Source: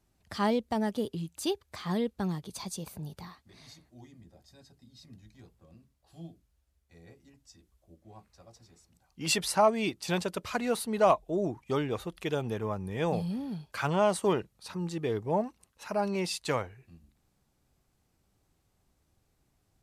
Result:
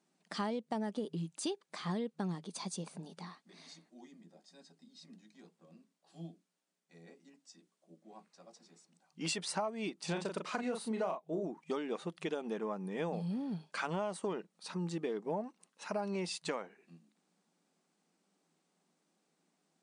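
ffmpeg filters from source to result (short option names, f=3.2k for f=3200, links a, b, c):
-filter_complex "[0:a]asettb=1/sr,asplit=3[a][b][c];[a]atrim=end=10.054[d];[b]atrim=start=10.05:end=11.43,asetpts=PTS-STARTPTS,afade=t=in:d=0.004:c=qsin,afade=t=out:st=1.376:d=0.004:c=qsin,asplit=2[e][f];[f]adelay=36,volume=-5.5dB[g];[e][g]amix=inputs=2:normalize=0,atrim=end_sample=60858[h];[c]atrim=start=11.426[i];[d][h]acrossfade=d=0.004:c1=hsin:c2=qsin[j];[j][i]acrossfade=d=0.004:c1=qsin:c2=hsin,afftfilt=real='re*between(b*sr/4096,160,10000)':imag='im*between(b*sr/4096,160,10000)':win_size=4096:overlap=0.75,acompressor=threshold=-31dB:ratio=12,adynamicequalizer=threshold=0.00224:dfrequency=2000:dqfactor=0.7:tfrequency=2000:tqfactor=0.7:attack=5:release=100:ratio=0.375:range=2:mode=cutabove:tftype=highshelf,volume=-1.5dB"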